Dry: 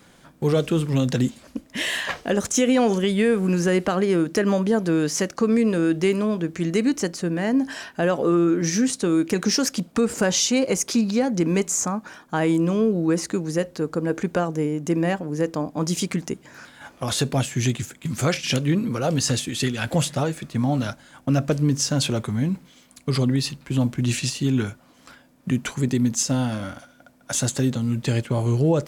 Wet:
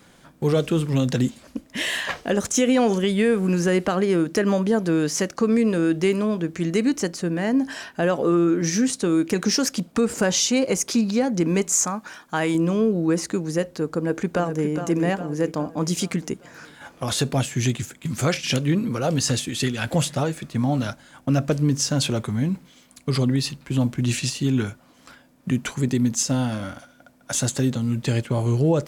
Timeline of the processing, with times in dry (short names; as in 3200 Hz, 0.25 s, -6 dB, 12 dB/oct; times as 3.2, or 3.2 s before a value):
11.72–12.55 tilt shelf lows -4 dB, about 880 Hz
13.93–14.69 echo throw 0.41 s, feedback 55%, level -8.5 dB